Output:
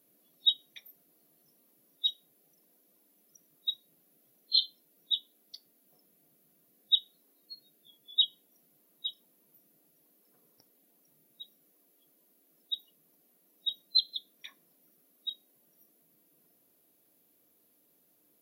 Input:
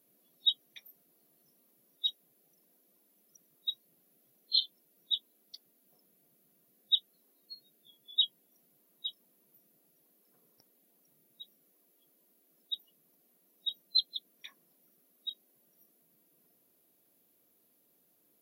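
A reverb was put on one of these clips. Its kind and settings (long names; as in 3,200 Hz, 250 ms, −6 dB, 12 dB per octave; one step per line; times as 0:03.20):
feedback delay network reverb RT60 0.33 s, high-frequency decay 0.8×, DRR 14.5 dB
level +1.5 dB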